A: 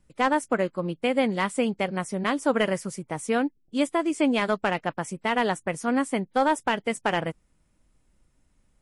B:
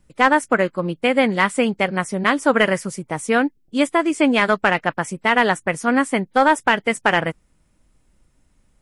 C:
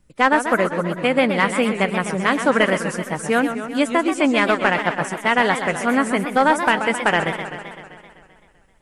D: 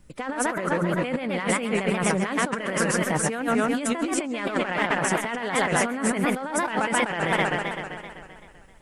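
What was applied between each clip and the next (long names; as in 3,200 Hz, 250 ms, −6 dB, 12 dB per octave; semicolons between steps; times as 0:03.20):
dynamic equaliser 1,700 Hz, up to +6 dB, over −38 dBFS, Q 1.1; level +5.5 dB
feedback echo with a swinging delay time 129 ms, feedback 68%, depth 217 cents, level −9 dB; level −1 dB
compressor whose output falls as the input rises −26 dBFS, ratio −1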